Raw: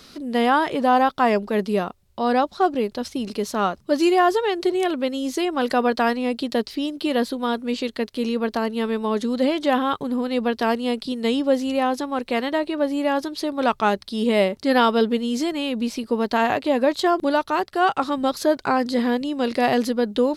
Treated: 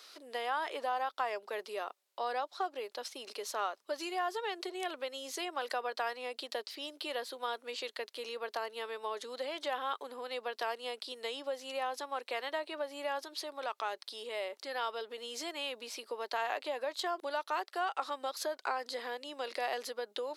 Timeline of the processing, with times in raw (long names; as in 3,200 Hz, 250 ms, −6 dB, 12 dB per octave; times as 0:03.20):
0:13.19–0:15.18: downward compressor 2 to 1, threshold −27 dBFS
whole clip: downward compressor, threshold −21 dBFS; Bessel high-pass filter 650 Hz, order 6; level −6.5 dB